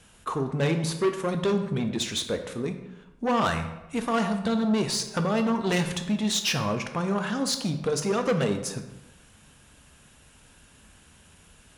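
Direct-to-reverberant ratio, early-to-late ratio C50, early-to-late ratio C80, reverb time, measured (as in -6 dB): 6.5 dB, 9.5 dB, 11.0 dB, 0.95 s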